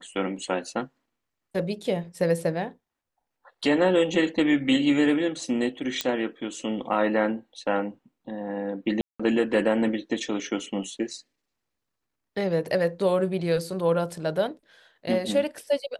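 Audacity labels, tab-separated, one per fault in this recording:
6.010000	6.010000	pop -10 dBFS
9.010000	9.200000	gap 0.185 s

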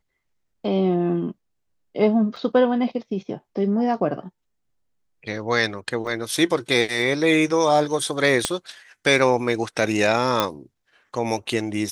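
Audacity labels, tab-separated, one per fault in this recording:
2.360000	2.360000	gap 4.5 ms
6.070000	6.070000	gap 2.2 ms
8.450000	8.450000	pop -5 dBFS
10.400000	10.400000	pop -5 dBFS

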